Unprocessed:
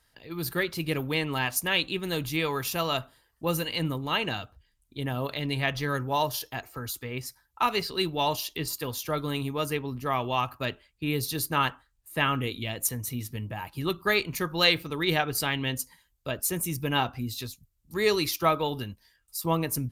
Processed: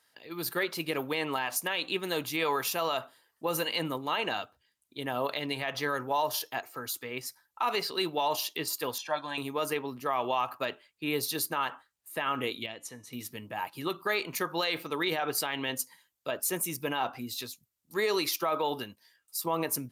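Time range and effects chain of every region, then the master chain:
8.98–9.38 HPF 620 Hz 6 dB/oct + air absorption 110 m + comb 1.2 ms, depth 88%
12.66–13.13 air absorption 78 m + resonator 290 Hz, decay 0.45 s, mix 50%
whole clip: Bessel high-pass 320 Hz, order 2; dynamic EQ 810 Hz, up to +6 dB, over -39 dBFS, Q 0.71; limiter -19 dBFS

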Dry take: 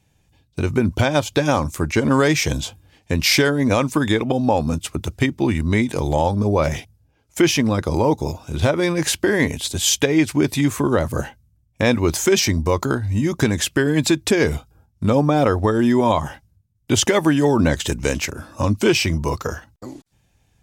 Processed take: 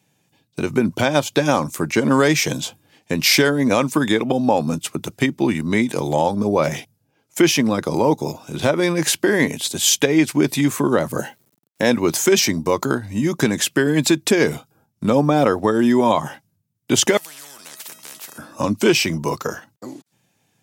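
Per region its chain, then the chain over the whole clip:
11.19–11.91 high shelf 6200 Hz +5.5 dB + notch comb 1200 Hz + requantised 10-bit, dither none
17.17–18.38 HPF 500 Hz 6 dB/oct + resonator 640 Hz, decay 0.39 s, mix 80% + spectral compressor 10:1
whole clip: HPF 140 Hz 24 dB/oct; high shelf 12000 Hz +6 dB; gain +1 dB

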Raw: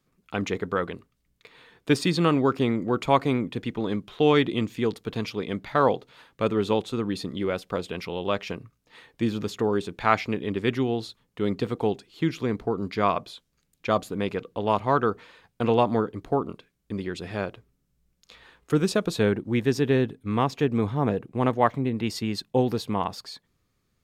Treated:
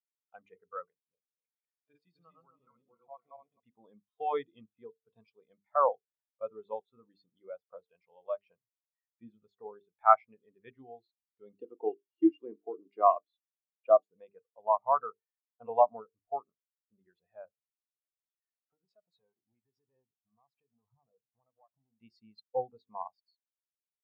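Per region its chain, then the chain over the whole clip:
0.9–3.6 regenerating reverse delay 0.13 s, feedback 55%, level -1 dB + compressor 2:1, threshold -37 dBFS
11.54–14.06 HPF 210 Hz 6 dB/oct + small resonant body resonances 320/2800 Hz, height 13 dB, ringing for 25 ms
17.45–22.01 compressor 10:1, threshold -30 dBFS + hard clip -30.5 dBFS
whole clip: resonant low shelf 490 Hz -8.5 dB, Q 1.5; notches 50/100/150/200/250/300/350/400/450 Hz; spectral expander 2.5:1; gain -3 dB

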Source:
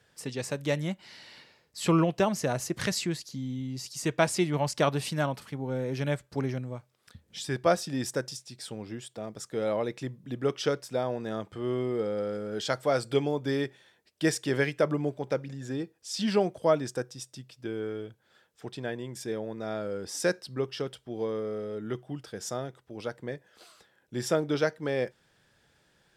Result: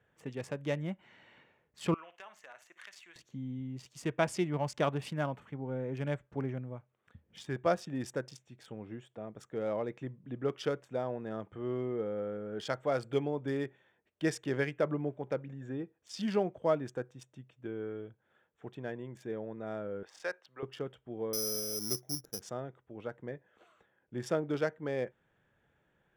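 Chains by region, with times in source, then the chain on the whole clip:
1.94–3.16 HPF 1500 Hz + compressor 2:1, threshold -43 dBFS + flutter echo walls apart 9.6 m, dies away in 0.24 s
20.03–20.63 three-band isolator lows -23 dB, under 540 Hz, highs -12 dB, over 6100 Hz + mismatched tape noise reduction encoder only
21.33–22.42 median filter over 41 samples + careless resampling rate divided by 8×, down filtered, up zero stuff
whole clip: Wiener smoothing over 9 samples; high shelf 6800 Hz -7 dB; notch 4000 Hz, Q 12; gain -5 dB

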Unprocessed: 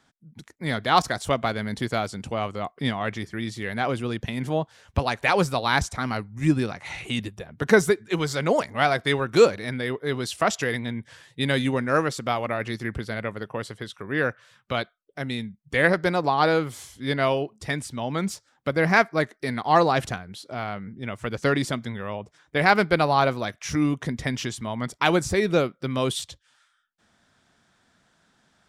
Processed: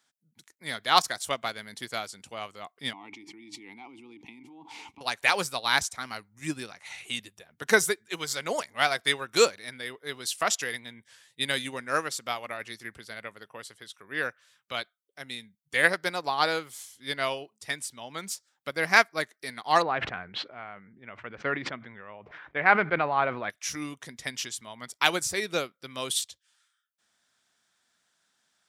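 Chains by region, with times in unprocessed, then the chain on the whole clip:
2.93–5.01 vowel filter u + bell 2100 Hz -5 dB 2.3 oct + fast leveller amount 100%
19.82–23.5 LPF 2300 Hz 24 dB/oct + sustainer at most 24 dB/s
whole clip: tilt +3.5 dB/oct; upward expander 1.5:1, over -34 dBFS; gain -1.5 dB

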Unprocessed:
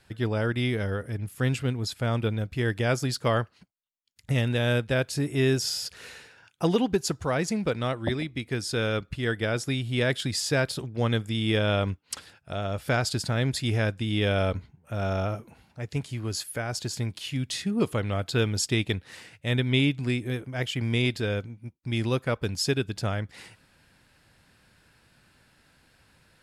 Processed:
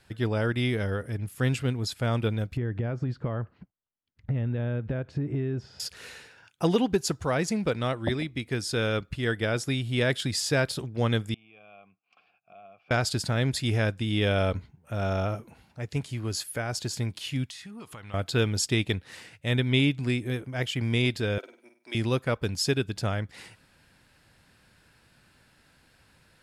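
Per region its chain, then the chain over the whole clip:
2.57–5.8 compressor 8:1, threshold -32 dBFS + LPF 1800 Hz + low shelf 370 Hz +9.5 dB
11.34–12.91 compressor 4:1, threshold -37 dBFS + vowel filter a + speaker cabinet 110–5100 Hz, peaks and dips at 110 Hz +8 dB, 190 Hz +10 dB, 560 Hz -7 dB, 960 Hz -4 dB, 2300 Hz +7 dB, 3900 Hz -8 dB
17.46–18.14 resonant low shelf 680 Hz -7 dB, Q 1.5 + compressor, threshold -40 dBFS
21.38–21.95 HPF 400 Hz 24 dB/oct + comb 3.1 ms, depth 36% + flutter echo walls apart 8.5 m, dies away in 0.41 s
whole clip: dry

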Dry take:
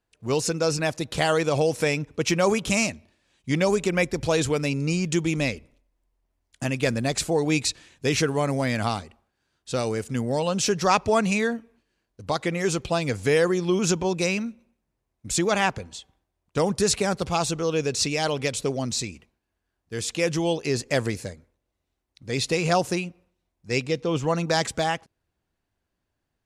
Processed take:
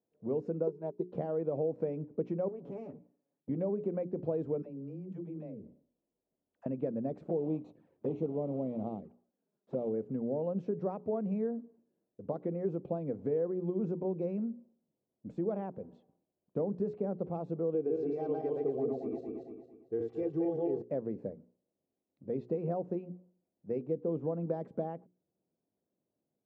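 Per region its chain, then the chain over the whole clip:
0.67–1.13 comb 4.9 ms, depth 54% + small resonant body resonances 390/920/3900 Hz, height 18 dB, ringing for 65 ms + upward expander 2.5:1, over -30 dBFS
2.48–3.49 minimum comb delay 7.1 ms + compressor, threshold -32 dBFS + three-band expander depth 40%
4.62–6.66 dispersion lows, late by 94 ms, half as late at 310 Hz + compressor 10:1, threshold -36 dBFS
7.29–9.94 block floating point 3-bit + envelope flanger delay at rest 5.3 ms, full sweep at -22.5 dBFS
17.74–20.82 regenerating reverse delay 0.113 s, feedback 58%, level -0.5 dB + comb 2.6 ms, depth 71%
whole clip: compressor 4:1, threshold -29 dBFS; Chebyshev band-pass 180–560 Hz, order 2; notches 60/120/180/240/300/360/420 Hz

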